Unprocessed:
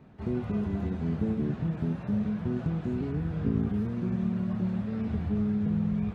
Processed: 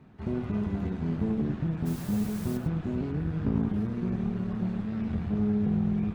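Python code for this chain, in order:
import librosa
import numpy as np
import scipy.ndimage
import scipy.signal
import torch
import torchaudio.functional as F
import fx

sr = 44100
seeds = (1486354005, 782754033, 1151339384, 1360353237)

y = fx.peak_eq(x, sr, hz=560.0, db=-4.5, octaves=0.68)
y = fx.cheby_harmonics(y, sr, harmonics=(6,), levels_db=(-22,), full_scale_db=-16.5)
y = fx.quant_dither(y, sr, seeds[0], bits=8, dither='triangular', at=(1.85, 2.56), fade=0.02)
y = y + 10.0 ** (-12.0 / 20.0) * np.pad(y, (int(105 * sr / 1000.0), 0))[:len(y)]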